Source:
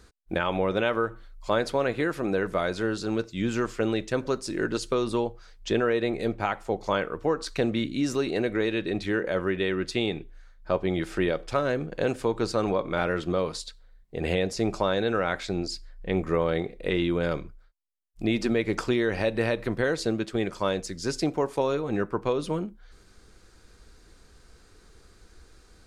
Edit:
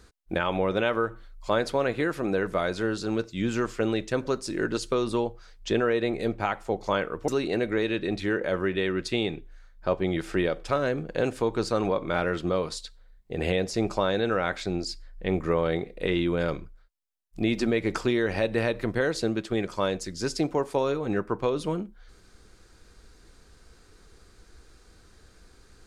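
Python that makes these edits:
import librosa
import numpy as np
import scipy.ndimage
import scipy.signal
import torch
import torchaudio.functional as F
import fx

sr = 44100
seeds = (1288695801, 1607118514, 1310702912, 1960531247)

y = fx.edit(x, sr, fx.cut(start_s=7.28, length_s=0.83), tone=tone)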